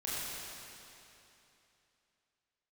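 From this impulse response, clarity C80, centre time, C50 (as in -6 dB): -3.0 dB, 0.208 s, -4.5 dB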